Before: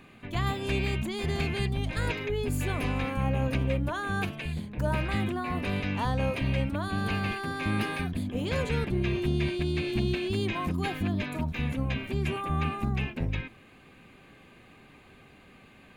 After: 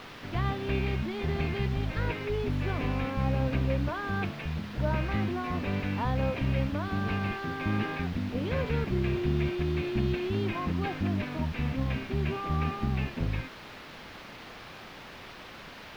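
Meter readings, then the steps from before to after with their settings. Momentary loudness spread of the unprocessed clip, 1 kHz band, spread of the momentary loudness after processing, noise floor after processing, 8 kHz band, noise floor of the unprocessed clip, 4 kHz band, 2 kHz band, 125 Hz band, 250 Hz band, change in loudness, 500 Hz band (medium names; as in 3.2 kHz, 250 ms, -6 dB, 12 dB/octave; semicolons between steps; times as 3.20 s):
3 LU, -1.0 dB, 16 LU, -46 dBFS, no reading, -55 dBFS, -3.5 dB, -2.5 dB, 0.0 dB, -0.5 dB, -0.5 dB, -0.5 dB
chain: word length cut 6-bit, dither triangular; distance through air 320 m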